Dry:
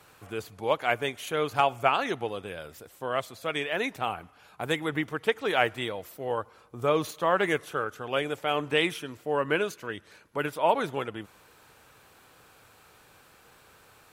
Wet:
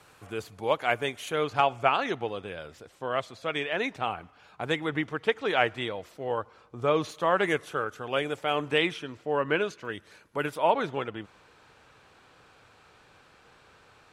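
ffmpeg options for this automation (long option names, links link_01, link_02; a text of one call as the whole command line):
ffmpeg -i in.wav -af "asetnsamples=nb_out_samples=441:pad=0,asendcmd='1.44 lowpass f 6100;7.11 lowpass f 10000;8.78 lowpass f 5500;9.85 lowpass f 12000;10.67 lowpass f 5400',lowpass=11000" out.wav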